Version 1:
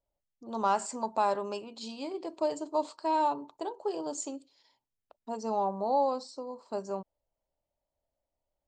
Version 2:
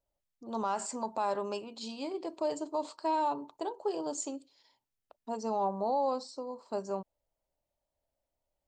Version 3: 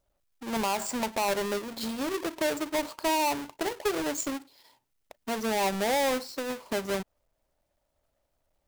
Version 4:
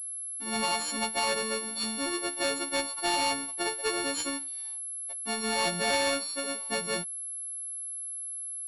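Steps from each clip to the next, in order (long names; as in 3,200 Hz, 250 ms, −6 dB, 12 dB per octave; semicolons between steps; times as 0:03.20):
brickwall limiter −22.5 dBFS, peak gain reduction 6.5 dB
each half-wave held at its own peak; in parallel at +1.5 dB: downward compressor, threshold −37 dBFS, peak gain reduction 11.5 dB; on the sum: level −2 dB
every partial snapped to a pitch grid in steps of 4 semitones; switching amplifier with a slow clock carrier 11,000 Hz; level −3.5 dB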